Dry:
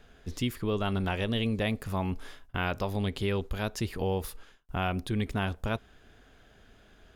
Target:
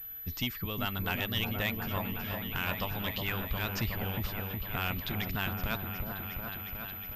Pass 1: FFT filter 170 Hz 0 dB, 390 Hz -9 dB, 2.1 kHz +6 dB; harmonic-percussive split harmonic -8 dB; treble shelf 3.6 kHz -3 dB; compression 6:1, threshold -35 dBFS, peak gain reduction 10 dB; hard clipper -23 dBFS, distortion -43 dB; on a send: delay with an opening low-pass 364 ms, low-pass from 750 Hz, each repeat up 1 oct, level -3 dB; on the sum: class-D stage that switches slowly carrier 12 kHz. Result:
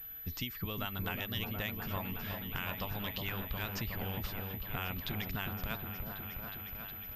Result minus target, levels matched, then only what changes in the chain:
compression: peak gain reduction +10 dB
remove: compression 6:1, threshold -35 dBFS, peak gain reduction 10 dB

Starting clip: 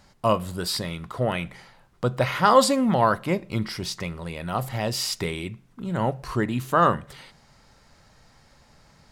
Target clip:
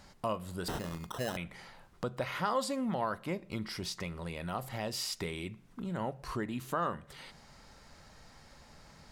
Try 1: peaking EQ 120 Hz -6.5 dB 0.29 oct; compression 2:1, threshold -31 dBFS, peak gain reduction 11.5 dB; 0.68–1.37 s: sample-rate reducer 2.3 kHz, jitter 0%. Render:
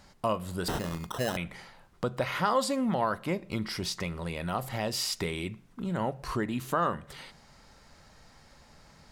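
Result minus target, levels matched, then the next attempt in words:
compression: peak gain reduction -5.5 dB
peaking EQ 120 Hz -6.5 dB 0.29 oct; compression 2:1, threshold -41.5 dBFS, peak gain reduction 16.5 dB; 0.68–1.37 s: sample-rate reducer 2.3 kHz, jitter 0%

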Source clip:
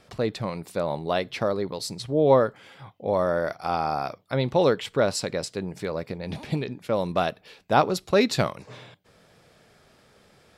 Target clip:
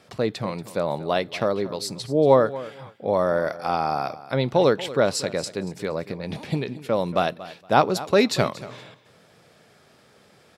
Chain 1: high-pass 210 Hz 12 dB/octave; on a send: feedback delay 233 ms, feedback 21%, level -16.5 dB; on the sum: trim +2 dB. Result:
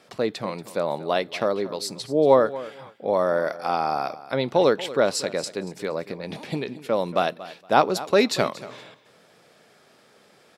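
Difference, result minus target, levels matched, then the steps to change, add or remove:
125 Hz band -6.0 dB
change: high-pass 100 Hz 12 dB/octave

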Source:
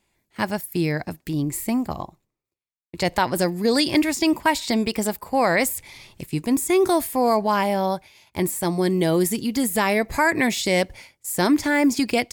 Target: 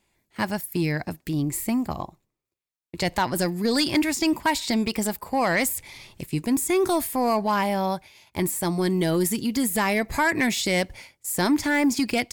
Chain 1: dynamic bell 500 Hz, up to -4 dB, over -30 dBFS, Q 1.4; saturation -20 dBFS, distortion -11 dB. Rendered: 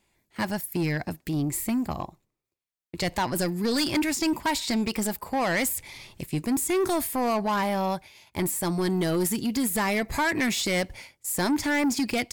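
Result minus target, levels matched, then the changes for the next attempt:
saturation: distortion +9 dB
change: saturation -13 dBFS, distortion -20 dB

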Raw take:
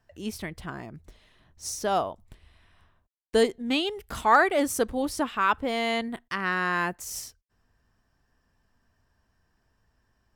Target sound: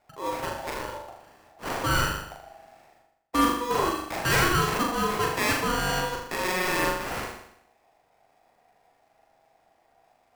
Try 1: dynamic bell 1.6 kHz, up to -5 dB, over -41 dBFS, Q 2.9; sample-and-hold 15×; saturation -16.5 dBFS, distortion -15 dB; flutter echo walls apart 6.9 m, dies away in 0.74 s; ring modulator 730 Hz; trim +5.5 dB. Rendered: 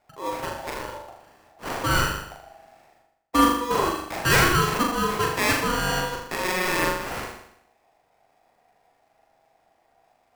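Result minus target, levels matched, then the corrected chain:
saturation: distortion -7 dB
dynamic bell 1.6 kHz, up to -5 dB, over -41 dBFS, Q 2.9; sample-and-hold 15×; saturation -23.5 dBFS, distortion -9 dB; flutter echo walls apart 6.9 m, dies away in 0.74 s; ring modulator 730 Hz; trim +5.5 dB

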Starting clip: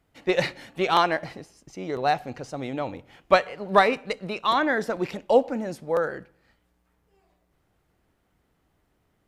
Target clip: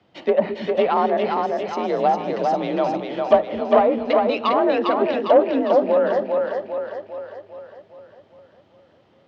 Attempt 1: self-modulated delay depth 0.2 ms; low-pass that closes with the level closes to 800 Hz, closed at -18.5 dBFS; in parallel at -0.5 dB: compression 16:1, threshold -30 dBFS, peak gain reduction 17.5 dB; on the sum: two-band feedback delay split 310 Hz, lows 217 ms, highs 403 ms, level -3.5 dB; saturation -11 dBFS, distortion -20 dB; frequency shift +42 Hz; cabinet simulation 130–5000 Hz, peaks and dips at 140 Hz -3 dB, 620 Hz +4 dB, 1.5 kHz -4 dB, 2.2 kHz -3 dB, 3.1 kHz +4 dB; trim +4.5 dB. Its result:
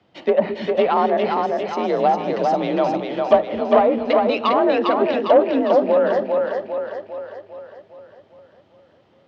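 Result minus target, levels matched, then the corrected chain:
compression: peak gain reduction -9 dB
self-modulated delay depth 0.2 ms; low-pass that closes with the level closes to 800 Hz, closed at -18.5 dBFS; in parallel at -0.5 dB: compression 16:1, threshold -39.5 dBFS, peak gain reduction 26 dB; on the sum: two-band feedback delay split 310 Hz, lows 217 ms, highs 403 ms, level -3.5 dB; saturation -11 dBFS, distortion -21 dB; frequency shift +42 Hz; cabinet simulation 130–5000 Hz, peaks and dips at 140 Hz -3 dB, 620 Hz +4 dB, 1.5 kHz -4 dB, 2.2 kHz -3 dB, 3.1 kHz +4 dB; trim +4.5 dB

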